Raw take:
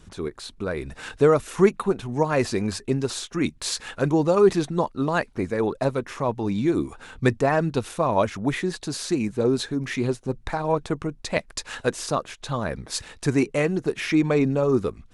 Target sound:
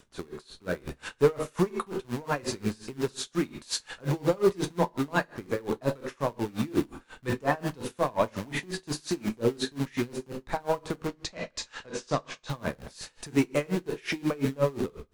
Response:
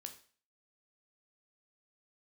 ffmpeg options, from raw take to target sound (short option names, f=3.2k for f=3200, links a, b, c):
-filter_complex "[0:a]acrossover=split=330|3400[a][b][c];[a]acrusher=bits=6:dc=4:mix=0:aa=0.000001[d];[d][b][c]amix=inputs=3:normalize=0,asettb=1/sr,asplit=3[e][f][g];[e]atrim=end=11.074[h];[f]atrim=start=11.07:end=12.47,asetpts=PTS-STARTPTS,afade=t=in:d=0.004:c=qsin,afade=t=out:st=1.396:d=0.004:c=qsin,lowpass=f=7.1k:w=0.5412,lowpass=f=7.1k:w=1.3066[i];[g]atrim=start=12.466[j];[h][i]acrossfade=d=0.004:c1=hsin:c2=qsin[k];[k][j]acrossfade=d=0.004:c1=qsin:c2=hsin,asoftclip=type=tanh:threshold=-12dB[l];[1:a]atrim=start_sample=2205,asetrate=40572,aresample=44100[m];[l][m]afir=irnorm=-1:irlink=0,aeval=exprs='val(0)*pow(10,-26*(0.5-0.5*cos(2*PI*5.6*n/s))/20)':c=same,volume=5dB"